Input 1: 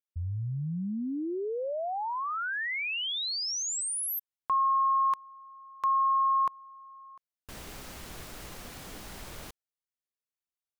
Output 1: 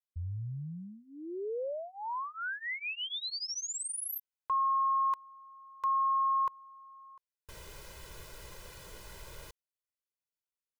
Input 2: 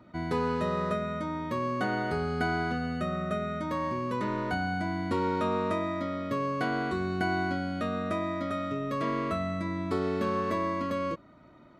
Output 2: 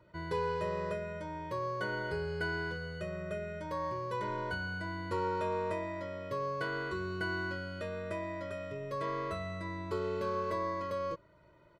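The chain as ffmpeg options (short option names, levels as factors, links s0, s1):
-af "aecho=1:1:2:0.92,volume=0.398"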